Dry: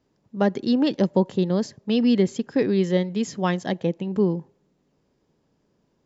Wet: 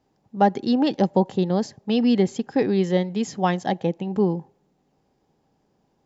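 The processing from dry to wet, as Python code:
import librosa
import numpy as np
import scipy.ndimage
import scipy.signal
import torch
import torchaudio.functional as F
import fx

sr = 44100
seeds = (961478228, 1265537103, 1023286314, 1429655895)

y = fx.peak_eq(x, sr, hz=790.0, db=12.5, octaves=0.23)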